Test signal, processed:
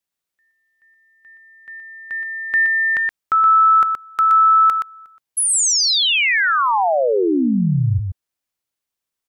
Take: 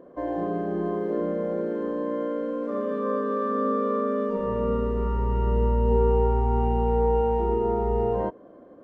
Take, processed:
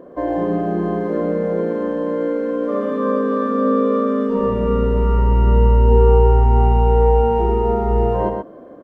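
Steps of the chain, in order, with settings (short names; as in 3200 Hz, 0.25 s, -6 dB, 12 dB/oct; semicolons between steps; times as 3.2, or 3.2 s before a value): echo 0.122 s -5.5 dB; gain +8 dB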